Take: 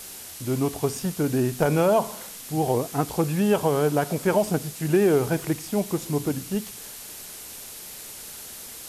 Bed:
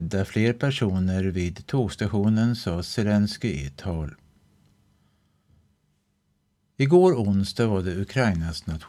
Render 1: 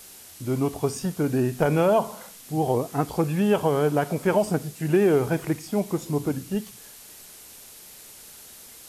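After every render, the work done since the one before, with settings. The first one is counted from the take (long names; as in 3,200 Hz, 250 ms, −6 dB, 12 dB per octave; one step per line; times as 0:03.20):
noise reduction from a noise print 6 dB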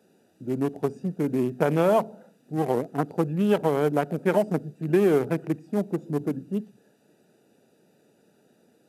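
adaptive Wiener filter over 41 samples
high-pass filter 150 Hz 24 dB per octave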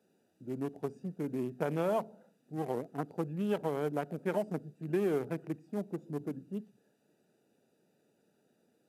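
level −10.5 dB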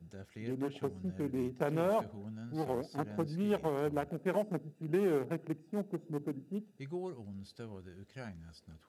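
mix in bed −24 dB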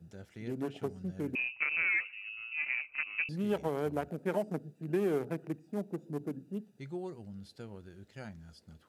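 0:01.35–0:03.29: voice inversion scrambler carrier 2,800 Hz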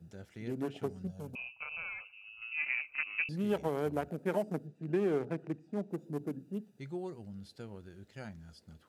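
0:01.07–0:02.42: phaser with its sweep stopped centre 790 Hz, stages 4
0:04.67–0:05.91: high-frequency loss of the air 60 metres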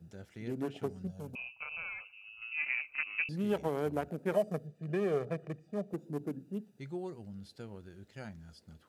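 0:04.32–0:05.94: comb filter 1.7 ms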